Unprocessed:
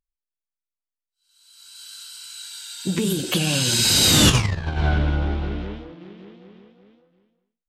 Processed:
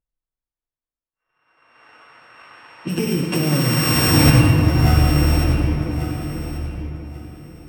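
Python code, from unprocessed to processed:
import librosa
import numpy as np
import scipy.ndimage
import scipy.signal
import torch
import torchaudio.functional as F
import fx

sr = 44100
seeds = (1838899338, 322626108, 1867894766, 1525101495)

y = np.r_[np.sort(x[:len(x) // 16 * 16].reshape(-1, 16), axis=1).ravel(), x[len(x) // 16 * 16:]]
y = fx.env_lowpass(y, sr, base_hz=1700.0, full_db=-19.0)
y = fx.peak_eq(y, sr, hz=4700.0, db=-6.5, octaves=1.8)
y = fx.notch_comb(y, sr, f0_hz=200.0)
y = fx.echo_feedback(y, sr, ms=1138, feedback_pct=21, wet_db=-11.0)
y = fx.room_shoebox(y, sr, seeds[0], volume_m3=140.0, walls='hard', distance_m=0.4)
y = y * librosa.db_to_amplitude(3.5)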